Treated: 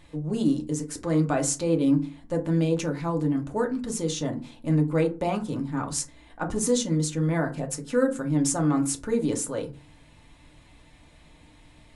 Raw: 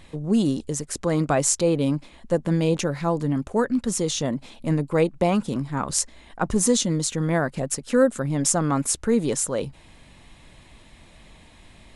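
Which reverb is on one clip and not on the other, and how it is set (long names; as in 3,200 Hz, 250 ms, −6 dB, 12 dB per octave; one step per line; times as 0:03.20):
feedback delay network reverb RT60 0.32 s, low-frequency decay 1.45×, high-frequency decay 0.5×, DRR 2.5 dB
level −6.5 dB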